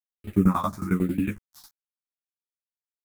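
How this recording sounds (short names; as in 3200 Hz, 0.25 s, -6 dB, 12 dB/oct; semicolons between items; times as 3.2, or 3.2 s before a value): a quantiser's noise floor 8-bit, dither none; phasing stages 4, 1.1 Hz, lowest notch 430–1000 Hz; tremolo saw down 11 Hz, depth 100%; a shimmering, thickened sound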